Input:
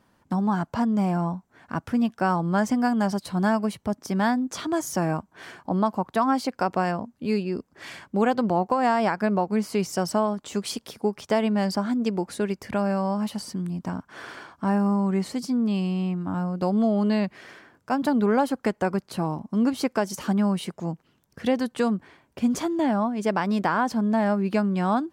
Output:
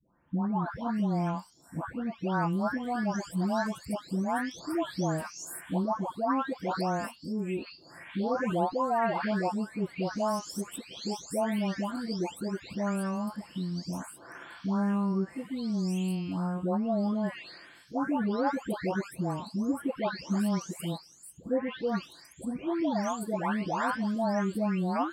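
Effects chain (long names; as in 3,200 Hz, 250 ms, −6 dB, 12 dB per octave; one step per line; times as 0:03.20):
every frequency bin delayed by itself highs late, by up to 658 ms
level −4 dB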